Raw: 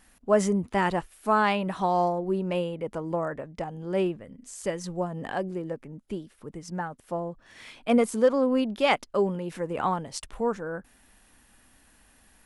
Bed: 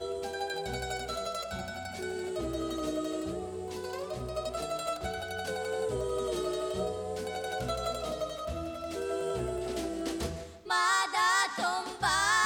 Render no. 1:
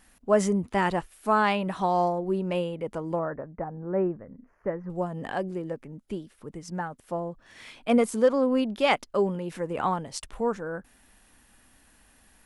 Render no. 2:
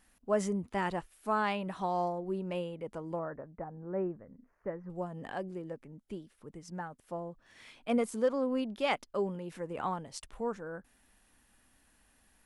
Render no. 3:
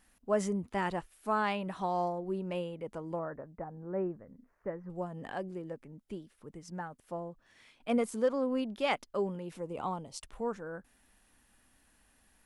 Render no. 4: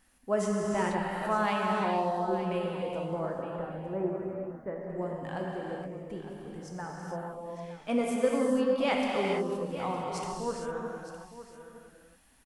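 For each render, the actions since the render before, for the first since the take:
3.19–4.90 s: inverse Chebyshev low-pass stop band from 3.4 kHz
trim -8 dB
7.22–7.80 s: fade out, to -9.5 dB; 9.54–10.20 s: peaking EQ 1.7 kHz -14 dB 0.51 oct
delay 912 ms -13.5 dB; gated-style reverb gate 490 ms flat, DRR -2 dB

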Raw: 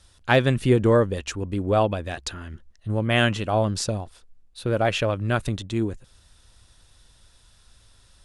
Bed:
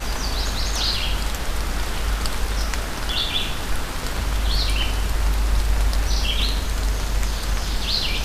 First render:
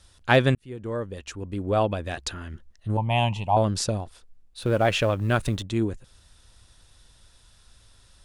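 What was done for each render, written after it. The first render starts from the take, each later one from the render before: 0.55–2.17 s: fade in; 2.97–3.57 s: FFT filter 160 Hz 0 dB, 310 Hz -13 dB, 530 Hz -10 dB, 910 Hz +13 dB, 1.4 kHz -29 dB, 2.5 kHz -2 dB, 4.2 kHz -9 dB; 4.62–5.63 s: companding laws mixed up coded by mu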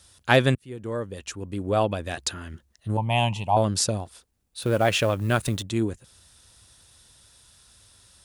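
high-pass 70 Hz; treble shelf 6.8 kHz +10.5 dB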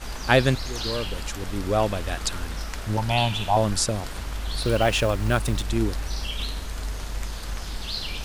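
add bed -8.5 dB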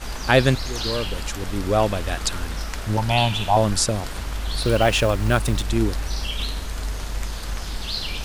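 trim +3 dB; peak limiter -1 dBFS, peak gain reduction 2.5 dB

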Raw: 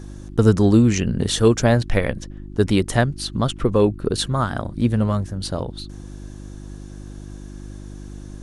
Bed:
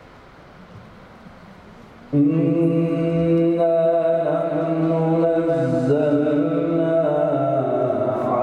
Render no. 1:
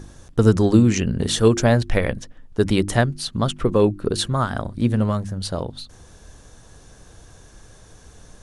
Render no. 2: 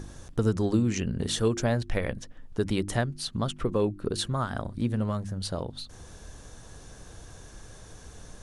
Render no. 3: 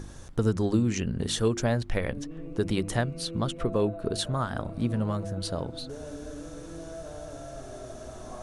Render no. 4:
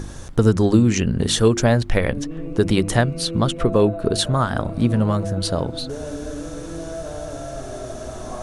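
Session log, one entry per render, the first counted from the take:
de-hum 50 Hz, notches 7
compression 1.5:1, threshold -39 dBFS, peak gain reduction 11 dB
add bed -22.5 dB
trim +9.5 dB

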